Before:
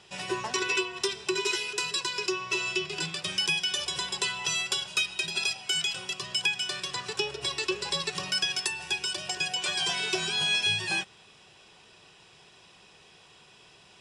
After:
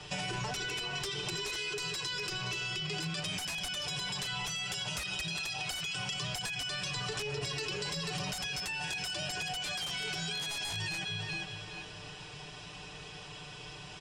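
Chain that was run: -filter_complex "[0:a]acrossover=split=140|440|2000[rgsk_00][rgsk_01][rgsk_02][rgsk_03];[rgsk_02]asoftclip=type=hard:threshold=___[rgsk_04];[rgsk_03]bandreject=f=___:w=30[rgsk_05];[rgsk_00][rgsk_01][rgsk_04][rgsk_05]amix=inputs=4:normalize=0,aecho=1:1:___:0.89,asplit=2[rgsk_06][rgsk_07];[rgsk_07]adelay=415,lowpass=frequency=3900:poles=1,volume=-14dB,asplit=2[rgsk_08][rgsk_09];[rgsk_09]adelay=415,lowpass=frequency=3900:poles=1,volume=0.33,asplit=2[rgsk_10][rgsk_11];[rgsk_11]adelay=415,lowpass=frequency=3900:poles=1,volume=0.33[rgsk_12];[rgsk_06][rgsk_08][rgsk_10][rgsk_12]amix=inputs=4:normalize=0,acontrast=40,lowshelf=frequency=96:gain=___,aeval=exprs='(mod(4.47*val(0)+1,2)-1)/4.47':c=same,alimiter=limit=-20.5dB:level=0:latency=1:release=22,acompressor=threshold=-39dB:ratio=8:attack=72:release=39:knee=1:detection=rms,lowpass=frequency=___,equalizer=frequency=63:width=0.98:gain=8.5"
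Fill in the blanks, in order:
-39dB, 3700, 6.7, 9.5, 8800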